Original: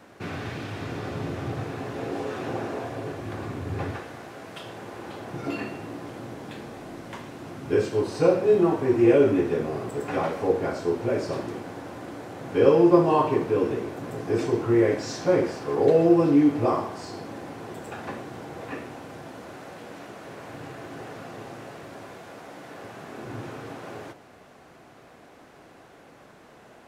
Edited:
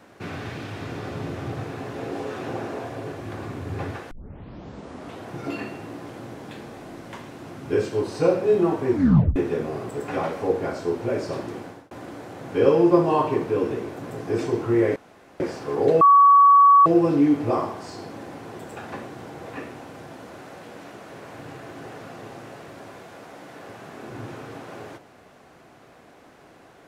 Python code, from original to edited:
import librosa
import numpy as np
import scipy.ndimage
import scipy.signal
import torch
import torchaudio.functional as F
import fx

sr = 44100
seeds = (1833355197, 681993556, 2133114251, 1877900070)

y = fx.edit(x, sr, fx.tape_start(start_s=4.11, length_s=1.16),
    fx.tape_stop(start_s=8.92, length_s=0.44),
    fx.fade_out_span(start_s=11.64, length_s=0.27),
    fx.room_tone_fill(start_s=14.96, length_s=0.44),
    fx.insert_tone(at_s=16.01, length_s=0.85, hz=1130.0, db=-9.5), tone=tone)